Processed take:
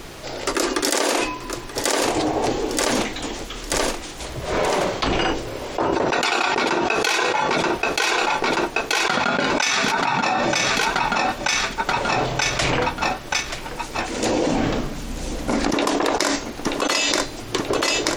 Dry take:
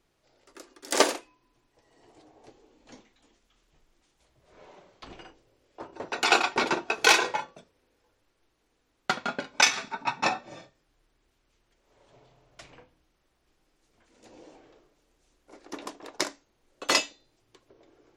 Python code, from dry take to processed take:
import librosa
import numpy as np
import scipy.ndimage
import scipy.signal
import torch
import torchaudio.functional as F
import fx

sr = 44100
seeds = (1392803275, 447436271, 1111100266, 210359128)

p1 = fx.low_shelf_res(x, sr, hz=290.0, db=6.5, q=3.0, at=(14.47, 15.74))
p2 = p1 + fx.echo_feedback(p1, sr, ms=931, feedback_pct=49, wet_db=-18.0, dry=0)
p3 = fx.env_flatten(p2, sr, amount_pct=100)
y = p3 * 10.0 ** (-4.5 / 20.0)